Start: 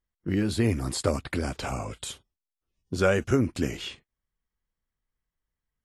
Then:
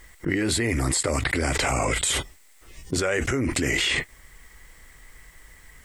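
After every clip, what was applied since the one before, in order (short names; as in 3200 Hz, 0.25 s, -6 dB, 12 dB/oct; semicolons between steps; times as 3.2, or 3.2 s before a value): thirty-one-band EQ 100 Hz -9 dB, 200 Hz -11 dB, 2000 Hz +12 dB, 8000 Hz +9 dB; fast leveller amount 100%; gain -4.5 dB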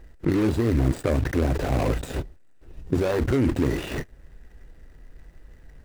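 median filter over 41 samples; gain +4.5 dB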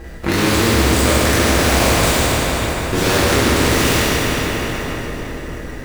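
reverb RT60 3.7 s, pre-delay 7 ms, DRR -9 dB; spectral compressor 2:1; gain -1 dB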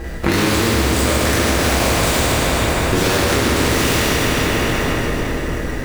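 compressor, threshold -19 dBFS, peak gain reduction 9 dB; gain +6 dB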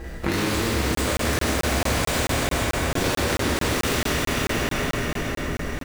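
feedback echo 0.524 s, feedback 44%, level -7.5 dB; crackling interface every 0.22 s, samples 1024, zero, from 0.95; gain -7.5 dB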